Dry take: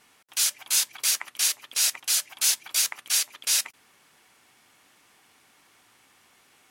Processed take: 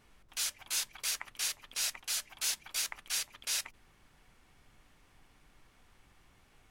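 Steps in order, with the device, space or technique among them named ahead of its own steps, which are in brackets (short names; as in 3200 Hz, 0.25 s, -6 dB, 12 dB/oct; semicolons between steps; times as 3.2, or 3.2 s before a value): car interior (bell 150 Hz +7.5 dB 0.88 oct; high shelf 4200 Hz -7 dB; brown noise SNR 23 dB); gain -6 dB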